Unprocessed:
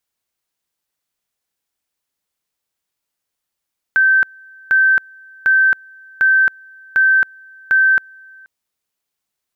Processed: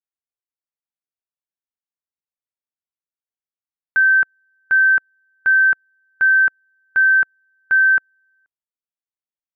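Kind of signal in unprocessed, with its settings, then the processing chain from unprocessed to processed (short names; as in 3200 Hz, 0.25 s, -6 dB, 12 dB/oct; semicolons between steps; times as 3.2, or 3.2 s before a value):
two-level tone 1550 Hz -9 dBFS, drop 29.5 dB, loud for 0.27 s, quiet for 0.48 s, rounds 6
LPF 2200 Hz 12 dB/oct; upward expander 2.5:1, over -26 dBFS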